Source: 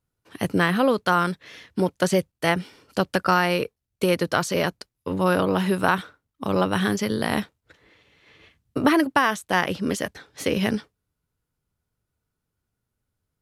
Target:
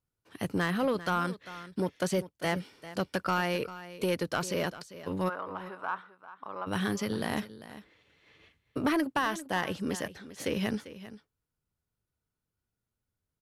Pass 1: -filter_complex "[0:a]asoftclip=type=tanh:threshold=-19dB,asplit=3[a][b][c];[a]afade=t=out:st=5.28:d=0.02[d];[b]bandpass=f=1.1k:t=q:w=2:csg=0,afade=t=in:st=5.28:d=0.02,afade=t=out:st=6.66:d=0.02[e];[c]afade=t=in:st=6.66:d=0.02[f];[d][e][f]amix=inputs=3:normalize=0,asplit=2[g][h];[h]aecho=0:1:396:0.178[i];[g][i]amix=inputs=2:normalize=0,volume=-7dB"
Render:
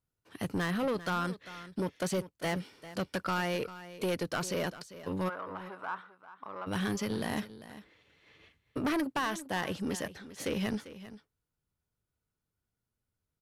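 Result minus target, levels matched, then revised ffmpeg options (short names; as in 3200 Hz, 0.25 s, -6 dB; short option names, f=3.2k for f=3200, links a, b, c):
soft clip: distortion +7 dB
-filter_complex "[0:a]asoftclip=type=tanh:threshold=-12.5dB,asplit=3[a][b][c];[a]afade=t=out:st=5.28:d=0.02[d];[b]bandpass=f=1.1k:t=q:w=2:csg=0,afade=t=in:st=5.28:d=0.02,afade=t=out:st=6.66:d=0.02[e];[c]afade=t=in:st=6.66:d=0.02[f];[d][e][f]amix=inputs=3:normalize=0,asplit=2[g][h];[h]aecho=0:1:396:0.178[i];[g][i]amix=inputs=2:normalize=0,volume=-7dB"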